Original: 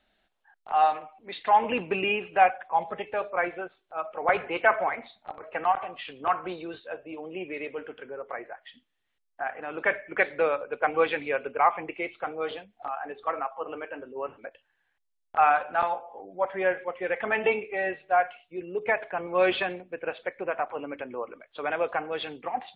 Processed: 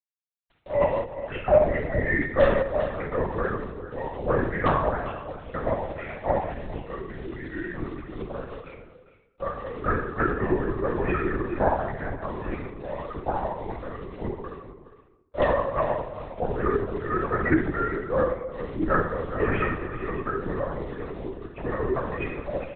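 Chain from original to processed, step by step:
high-pass filter 350 Hz 24 dB per octave
reverb reduction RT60 1.1 s
dynamic equaliser 710 Hz, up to −5 dB, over −35 dBFS, Q 2.1
pitch shifter −5.5 semitones
rotating-speaker cabinet horn 1.2 Hz, later 6 Hz, at 0:04.28
in parallel at −5 dB: wrap-around overflow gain 14 dB
on the sum: bit reduction 8 bits
on a send: single-tap delay 409 ms −13.5 dB
on the sum: rectangular room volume 3,300 cubic metres, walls furnished, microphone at 6.4 metres
linear-prediction vocoder at 8 kHz whisper
level −3 dB

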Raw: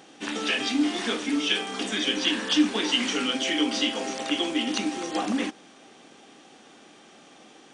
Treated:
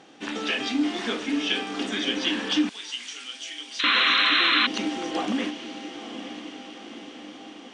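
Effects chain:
high-frequency loss of the air 68 metres
feedback delay with all-pass diffusion 929 ms, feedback 61%, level −11 dB
0:03.79–0:04.67: sound drawn into the spectrogram noise 990–4,200 Hz −15 dBFS
downward compressor, threshold −17 dBFS, peak gain reduction 6 dB
0:02.69–0:03.84: first-order pre-emphasis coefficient 0.97

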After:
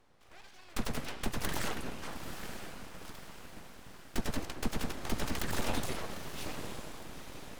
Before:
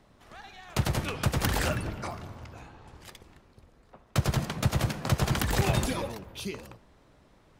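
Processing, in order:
feedback delay with all-pass diffusion 925 ms, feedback 52%, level −8.5 dB
full-wave rectification
level −5 dB

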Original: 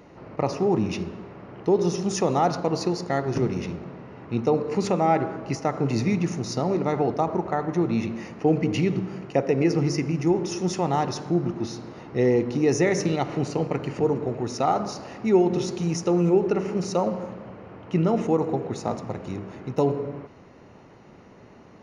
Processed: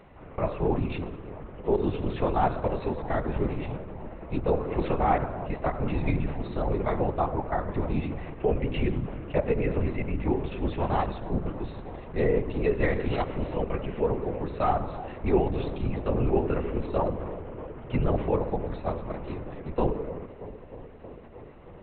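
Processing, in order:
parametric band 320 Hz −10.5 dB 0.27 octaves
delay with a low-pass on its return 314 ms, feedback 80%, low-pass 990 Hz, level −15 dB
linear-prediction vocoder at 8 kHz whisper
level −2 dB

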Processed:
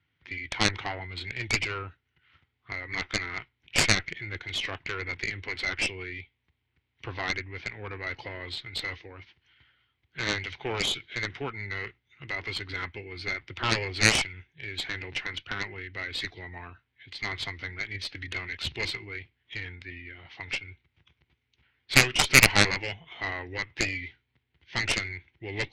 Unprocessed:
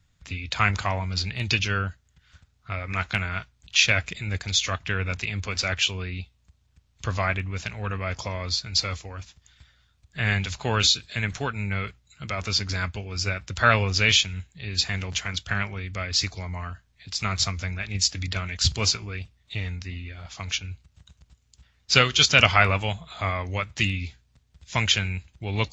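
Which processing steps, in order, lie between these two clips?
formants moved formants −2 semitones
loudspeaker in its box 150–3,400 Hz, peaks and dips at 190 Hz −10 dB, 350 Hz +8 dB, 620 Hz −9 dB, 1,200 Hz −8 dB, 2,100 Hz +6 dB
harmonic generator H 6 −15 dB, 7 −11 dB, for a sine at 0 dBFS
level −2.5 dB

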